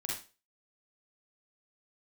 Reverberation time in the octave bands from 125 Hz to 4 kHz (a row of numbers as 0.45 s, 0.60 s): 0.30 s, 0.35 s, 0.35 s, 0.30 s, 0.30 s, 0.30 s